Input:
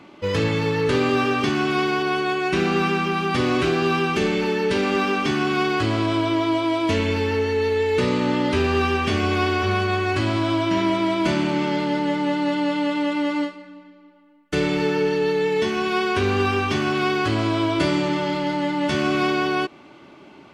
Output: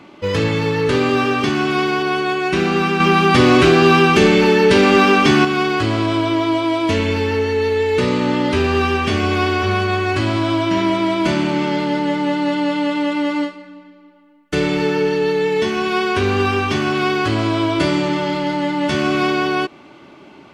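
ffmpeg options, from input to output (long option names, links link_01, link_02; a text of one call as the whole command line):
ffmpeg -i in.wav -filter_complex "[0:a]asettb=1/sr,asplit=3[link_01][link_02][link_03];[link_01]atrim=end=3.004[link_04];[link_02]atrim=start=3:end=5.45,asetpts=PTS-STARTPTS,afade=type=in:duration=0.004:curve=qsin,afade=type=out:start_time=2.446:duration=0.004:curve=qsin,acontrast=60[link_05];[link_03]atrim=start=5.446[link_06];[link_04][link_05]acrossfade=duration=0.004:curve1=hsin:curve2=qsin[link_07];[link_07][link_06]acrossfade=duration=0.004:curve1=qsin:curve2=hsin,volume=3.5dB" out.wav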